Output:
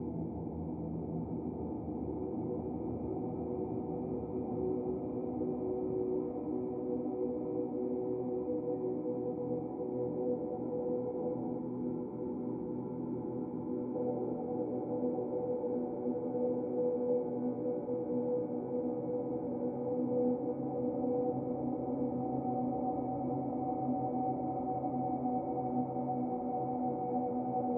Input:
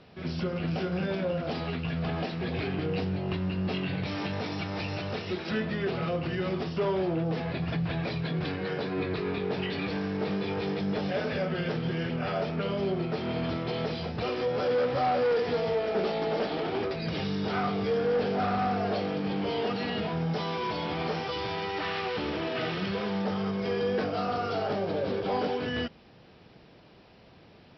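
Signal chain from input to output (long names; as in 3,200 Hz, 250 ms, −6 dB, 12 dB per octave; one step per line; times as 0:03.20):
extreme stretch with random phases 26×, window 0.50 s, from 0:14.09
gain on a spectral selection 0:11.59–0:13.95, 410–830 Hz −9 dB
formant resonators in series u
level +5.5 dB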